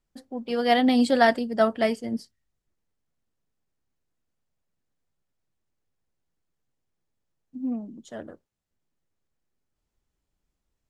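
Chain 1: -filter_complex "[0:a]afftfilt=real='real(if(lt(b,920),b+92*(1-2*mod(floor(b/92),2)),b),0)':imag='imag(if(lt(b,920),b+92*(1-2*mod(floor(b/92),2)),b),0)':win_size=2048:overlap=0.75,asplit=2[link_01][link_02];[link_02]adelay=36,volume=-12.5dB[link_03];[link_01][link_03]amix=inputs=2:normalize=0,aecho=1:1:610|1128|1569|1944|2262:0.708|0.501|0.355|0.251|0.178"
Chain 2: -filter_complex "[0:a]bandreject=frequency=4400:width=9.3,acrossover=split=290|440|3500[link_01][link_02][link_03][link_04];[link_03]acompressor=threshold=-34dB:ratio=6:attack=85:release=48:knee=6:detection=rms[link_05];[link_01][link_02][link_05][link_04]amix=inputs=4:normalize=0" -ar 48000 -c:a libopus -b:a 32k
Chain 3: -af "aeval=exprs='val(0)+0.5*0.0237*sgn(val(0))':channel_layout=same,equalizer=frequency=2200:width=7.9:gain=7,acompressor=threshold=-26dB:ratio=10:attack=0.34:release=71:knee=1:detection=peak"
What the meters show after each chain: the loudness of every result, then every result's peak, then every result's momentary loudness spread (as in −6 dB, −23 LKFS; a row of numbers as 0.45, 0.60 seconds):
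−20.0, −26.5, −33.5 LKFS; −4.5, −12.0, −22.5 dBFS; 21, 20, 23 LU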